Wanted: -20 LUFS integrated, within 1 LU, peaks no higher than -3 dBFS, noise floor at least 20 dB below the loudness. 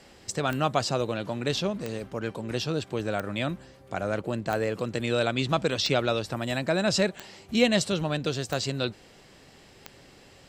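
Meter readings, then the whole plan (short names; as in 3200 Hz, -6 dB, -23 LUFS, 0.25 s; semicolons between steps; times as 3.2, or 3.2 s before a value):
clicks 8; loudness -28.0 LUFS; peak -9.0 dBFS; loudness target -20.0 LUFS
-> de-click; gain +8 dB; limiter -3 dBFS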